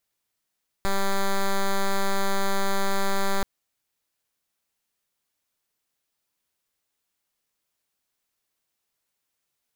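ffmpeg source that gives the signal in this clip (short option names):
-f lavfi -i "aevalsrc='0.0794*(2*lt(mod(196*t,1),0.07)-1)':d=2.58:s=44100"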